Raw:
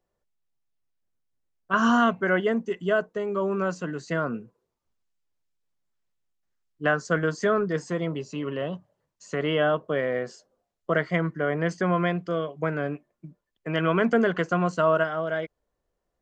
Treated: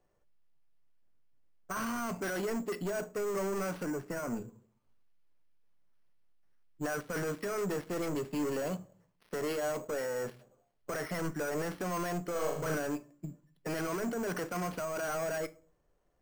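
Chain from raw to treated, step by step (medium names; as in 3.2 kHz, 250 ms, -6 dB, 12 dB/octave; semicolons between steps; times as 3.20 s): dead-time distortion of 0.1 ms; dynamic bell 150 Hz, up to -7 dB, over -42 dBFS, Q 2; compressor with a negative ratio -25 dBFS, ratio -0.5; peak limiter -20.5 dBFS, peak gain reduction 8.5 dB; saturation -34 dBFS, distortion -7 dB; 3.83–4.37 s: distance through air 480 m; 12.31–12.75 s: flutter echo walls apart 6.5 m, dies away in 0.62 s; simulated room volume 280 m³, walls furnished, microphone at 0.39 m; careless resampling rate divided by 6×, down filtered, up hold; trim +2.5 dB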